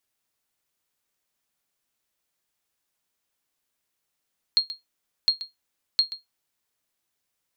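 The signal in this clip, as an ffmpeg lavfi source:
ffmpeg -f lavfi -i "aevalsrc='0.282*(sin(2*PI*4250*mod(t,0.71))*exp(-6.91*mod(t,0.71)/0.16)+0.188*sin(2*PI*4250*max(mod(t,0.71)-0.13,0))*exp(-6.91*max(mod(t,0.71)-0.13,0)/0.16))':duration=2.13:sample_rate=44100" out.wav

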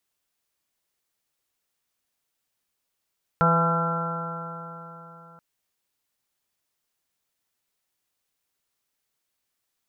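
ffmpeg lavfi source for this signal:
ffmpeg -f lavfi -i "aevalsrc='0.0944*pow(10,-3*t/3.71)*sin(2*PI*166.07*t)+0.0119*pow(10,-3*t/3.71)*sin(2*PI*332.52*t)+0.0531*pow(10,-3*t/3.71)*sin(2*PI*499.77*t)+0.0422*pow(10,-3*t/3.71)*sin(2*PI*668.18*t)+0.0473*pow(10,-3*t/3.71)*sin(2*PI*838.16*t)+0.0422*pow(10,-3*t/3.71)*sin(2*PI*1010.06*t)+0.0168*pow(10,-3*t/3.71)*sin(2*PI*1184.28*t)+0.112*pow(10,-3*t/3.71)*sin(2*PI*1361.16*t)+0.015*pow(10,-3*t/3.71)*sin(2*PI*1541.06*t)':duration=1.98:sample_rate=44100" out.wav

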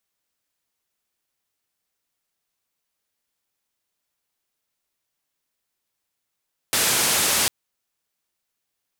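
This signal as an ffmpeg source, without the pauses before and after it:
ffmpeg -f lavfi -i "anoisesrc=color=white:duration=0.75:sample_rate=44100:seed=1,highpass=frequency=85,lowpass=frequency=12000,volume=-13dB" out.wav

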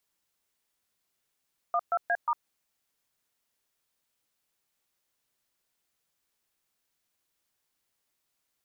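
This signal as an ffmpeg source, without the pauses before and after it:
ffmpeg -f lavfi -i "aevalsrc='0.0501*clip(min(mod(t,0.179),0.054-mod(t,0.179))/0.002,0,1)*(eq(floor(t/0.179),0)*(sin(2*PI*697*mod(t,0.179))+sin(2*PI*1209*mod(t,0.179)))+eq(floor(t/0.179),1)*(sin(2*PI*697*mod(t,0.179))+sin(2*PI*1336*mod(t,0.179)))+eq(floor(t/0.179),2)*(sin(2*PI*697*mod(t,0.179))+sin(2*PI*1633*mod(t,0.179)))+eq(floor(t/0.179),3)*(sin(2*PI*941*mod(t,0.179))+sin(2*PI*1209*mod(t,0.179))))':duration=0.716:sample_rate=44100" out.wav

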